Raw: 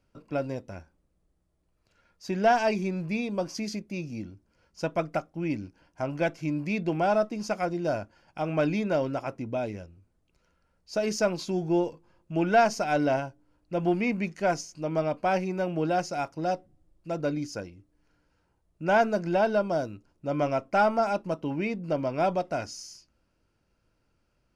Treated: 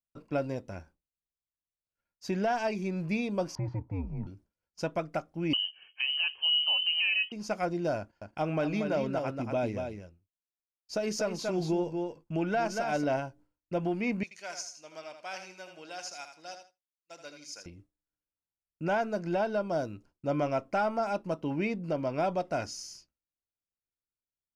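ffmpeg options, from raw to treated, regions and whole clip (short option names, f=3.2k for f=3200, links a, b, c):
-filter_complex "[0:a]asettb=1/sr,asplit=3[a][b][c];[a]atrim=end=3.554[d];[b]atrim=start=3.55:end=4.27,asetpts=PTS-STARTPTS,afade=t=in:d=0.004:c=qsin,afade=t=out:st=0.716:d=0.004:c=qsin,afreqshift=-91,lowpass=f=920:t=q:w=10[e];[c]atrim=start=4.266[f];[d][e]acrossfade=d=0.004:c1=hsin:c2=qsin[g];[g][f]acrossfade=d=0.004:c1=qsin:c2=hsin,asettb=1/sr,asplit=3[h][i][j];[h]atrim=end=5.534[k];[i]atrim=start=5.53:end=7.32,asetpts=PTS-STARTPTS,afade=t=in:d=0.004:c=qsin,afade=t=out:st=1.786:d=0.004:c=qsin,equalizer=f=330:w=0.43:g=13.5,asoftclip=type=hard:threshold=-6dB,lowpass=f=2.7k:t=q:w=0.5098,lowpass=f=2.7k:t=q:w=0.6013,lowpass=f=2.7k:t=q:w=0.9,lowpass=f=2.7k:t=q:w=2.563,afreqshift=-3200[l];[j]atrim=start=7.316[m];[k][l]acrossfade=d=0.004:c1=hsin:c2=qsin[n];[n][m]acrossfade=d=0.004:c1=qsin:c2=hsin,asettb=1/sr,asplit=3[o][p][q];[o]atrim=end=7.984[r];[p]atrim=start=7.98:end=13.04,asetpts=PTS-STARTPTS,afade=t=in:d=0.004:c=qsin,afade=t=out:st=5.056:d=0.004:c=qsin,agate=range=-12dB:threshold=-58dB:ratio=16:release=100:detection=peak,aecho=1:1:233:0.473,atrim=end_sample=223146[s];[q]atrim=start=13.036[t];[r][s]acrossfade=d=0.004:c1=hsin:c2=qsin[u];[u][t]acrossfade=d=0.004:c1=qsin:c2=hsin,asettb=1/sr,asplit=3[v][w][x];[v]atrim=end=14.234[y];[w]atrim=start=14.23:end=17.66,asetpts=PTS-STARTPTS,afade=t=in:d=0.004:c=qsin,afade=t=out:st=3.426:d=0.004:c=qsin,bandpass=f=6.3k:t=q:w=0.74,aecho=1:1:80|160|240|320:0.398|0.123|0.0383|0.0119,atrim=end_sample=151263[z];[x]atrim=start=17.656[aa];[y][z]acrossfade=d=0.004:c1=hsin:c2=qsin[ab];[ab][aa]acrossfade=d=0.004:c1=qsin:c2=hsin,agate=range=-33dB:threshold=-50dB:ratio=3:detection=peak,alimiter=limit=-20.5dB:level=0:latency=1:release=443"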